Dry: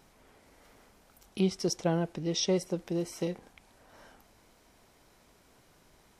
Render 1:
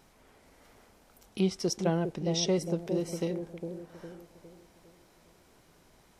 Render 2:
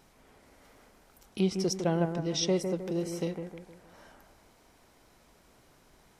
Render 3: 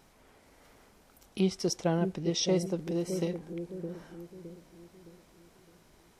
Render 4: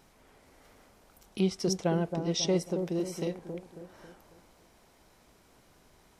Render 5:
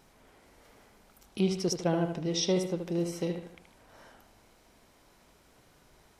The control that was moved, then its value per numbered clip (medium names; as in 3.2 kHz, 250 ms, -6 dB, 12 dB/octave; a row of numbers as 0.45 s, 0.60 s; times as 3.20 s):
bucket-brigade echo, time: 407 ms, 155 ms, 613 ms, 272 ms, 76 ms